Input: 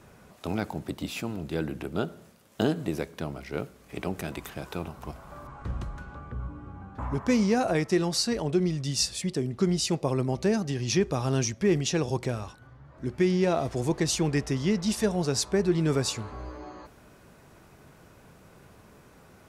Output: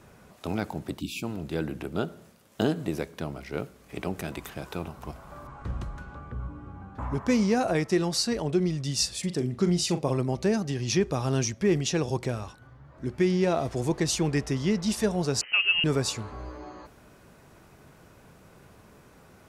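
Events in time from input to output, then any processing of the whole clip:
1.00–1.22 s: spectral selection erased 390–2200 Hz
9.19–10.18 s: doubling 40 ms -10 dB
15.41–15.84 s: frequency inversion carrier 3 kHz

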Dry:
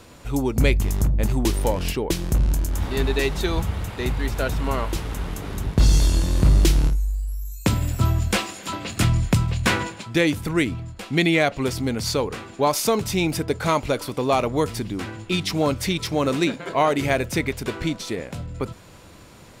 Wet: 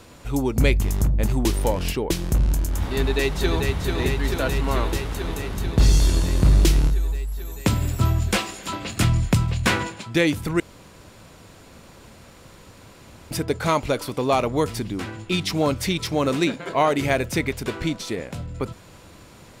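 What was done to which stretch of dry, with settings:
2.97–3.65 s: echo throw 440 ms, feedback 80%, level -4.5 dB
10.60–13.31 s: room tone

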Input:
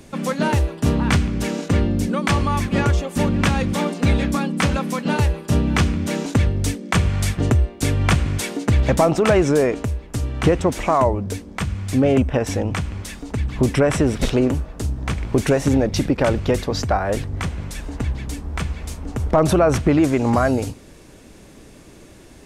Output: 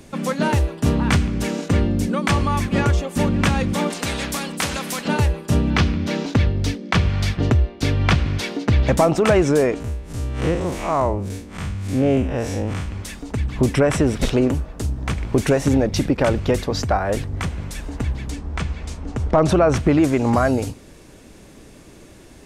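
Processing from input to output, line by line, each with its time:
3.90–5.08 s: spectrum-flattening compressor 2:1
5.70–8.88 s: resonant high shelf 6.3 kHz -9.5 dB, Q 1.5
9.80–12.88 s: spectral blur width 109 ms
18.30–19.77 s: low-pass 7.3 kHz

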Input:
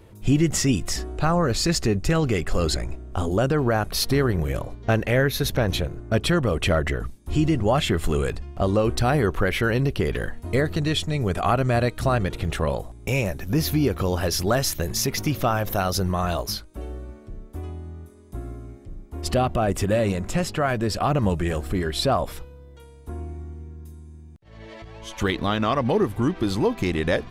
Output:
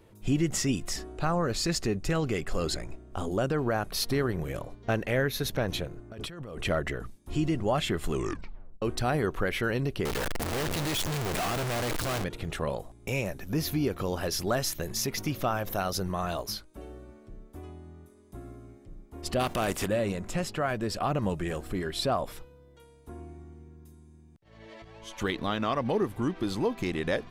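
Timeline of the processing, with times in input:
6.11–6.65 s: compressor with a negative ratio -32 dBFS
8.12 s: tape stop 0.70 s
10.05–12.24 s: one-bit comparator
19.39–19.86 s: spectral contrast reduction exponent 0.63
whole clip: peaking EQ 65 Hz -7.5 dB 1.4 oct; trim -6 dB

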